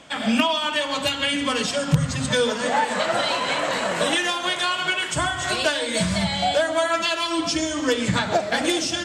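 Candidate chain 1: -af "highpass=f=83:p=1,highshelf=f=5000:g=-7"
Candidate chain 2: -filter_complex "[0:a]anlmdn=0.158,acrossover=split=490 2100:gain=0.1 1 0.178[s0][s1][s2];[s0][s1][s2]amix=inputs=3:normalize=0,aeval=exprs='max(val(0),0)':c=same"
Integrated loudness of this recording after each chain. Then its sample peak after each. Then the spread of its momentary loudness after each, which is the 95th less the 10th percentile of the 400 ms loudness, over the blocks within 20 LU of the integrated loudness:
-23.0 LUFS, -31.5 LUFS; -7.0 dBFS, -11.5 dBFS; 3 LU, 6 LU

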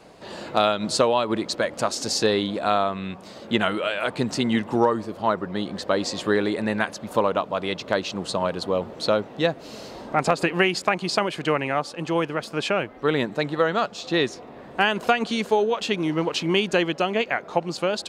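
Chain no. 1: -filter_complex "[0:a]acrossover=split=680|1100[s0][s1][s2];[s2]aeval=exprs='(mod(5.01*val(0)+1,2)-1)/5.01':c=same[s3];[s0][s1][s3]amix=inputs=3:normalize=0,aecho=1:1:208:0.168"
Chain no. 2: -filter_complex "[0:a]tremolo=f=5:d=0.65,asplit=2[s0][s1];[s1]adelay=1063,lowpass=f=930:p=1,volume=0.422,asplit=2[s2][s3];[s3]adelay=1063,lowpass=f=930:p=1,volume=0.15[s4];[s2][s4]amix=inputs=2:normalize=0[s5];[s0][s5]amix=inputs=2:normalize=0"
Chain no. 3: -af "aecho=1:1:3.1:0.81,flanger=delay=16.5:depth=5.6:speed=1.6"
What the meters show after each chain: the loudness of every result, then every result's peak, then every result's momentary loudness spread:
-24.0 LUFS, -26.5 LUFS, -25.0 LUFS; -6.0 dBFS, -6.0 dBFS, -6.0 dBFS; 6 LU, 6 LU, 6 LU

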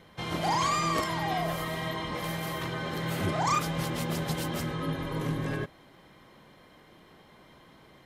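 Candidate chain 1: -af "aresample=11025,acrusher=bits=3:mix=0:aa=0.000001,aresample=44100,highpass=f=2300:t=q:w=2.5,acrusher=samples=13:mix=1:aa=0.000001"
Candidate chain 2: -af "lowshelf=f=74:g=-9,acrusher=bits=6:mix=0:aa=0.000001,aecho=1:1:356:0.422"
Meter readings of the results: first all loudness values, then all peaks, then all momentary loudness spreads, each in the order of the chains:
-30.0 LUFS, -30.5 LUFS; -12.5 dBFS, -16.0 dBFS; 19 LU, 7 LU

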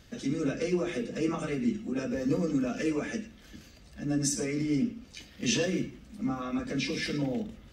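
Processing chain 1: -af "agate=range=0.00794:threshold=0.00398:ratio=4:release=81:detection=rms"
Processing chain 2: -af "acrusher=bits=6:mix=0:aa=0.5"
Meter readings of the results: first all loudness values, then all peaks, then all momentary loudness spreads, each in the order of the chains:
-31.0 LUFS, -31.0 LUFS; -15.5 dBFS, -15.5 dBFS; 8 LU, 8 LU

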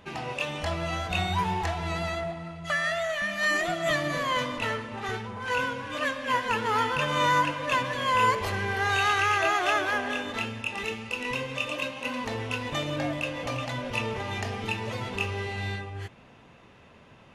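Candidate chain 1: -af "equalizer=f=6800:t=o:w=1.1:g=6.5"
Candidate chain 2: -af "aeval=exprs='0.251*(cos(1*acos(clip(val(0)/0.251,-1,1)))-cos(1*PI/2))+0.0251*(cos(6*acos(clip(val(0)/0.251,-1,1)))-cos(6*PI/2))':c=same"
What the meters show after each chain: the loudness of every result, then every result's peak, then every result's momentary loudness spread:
-27.5 LUFS, -28.0 LUFS; -12.0 dBFS, -11.0 dBFS; 9 LU, 10 LU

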